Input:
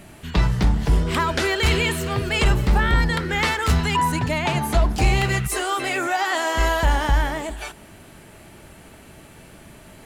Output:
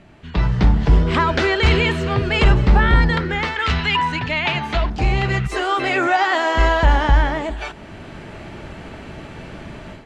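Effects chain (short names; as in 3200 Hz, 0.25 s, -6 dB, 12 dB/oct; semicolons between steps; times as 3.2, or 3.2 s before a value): 3.56–4.9 bell 2800 Hz +12.5 dB 2.2 oct; AGC gain up to 14 dB; air absorption 150 m; gain -3 dB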